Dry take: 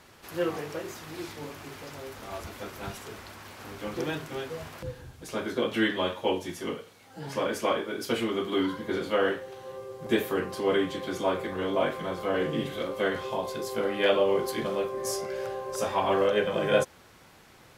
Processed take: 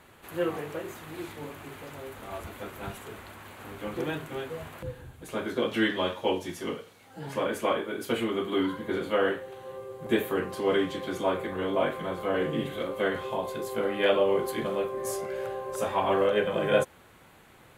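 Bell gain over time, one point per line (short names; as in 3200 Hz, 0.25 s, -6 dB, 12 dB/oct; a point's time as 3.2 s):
bell 5300 Hz 0.55 oct
5.27 s -13.5 dB
5.7 s -2 dB
6.77 s -2 dB
7.47 s -11.5 dB
10.3 s -11.5 dB
10.8 s -1.5 dB
11.42 s -11.5 dB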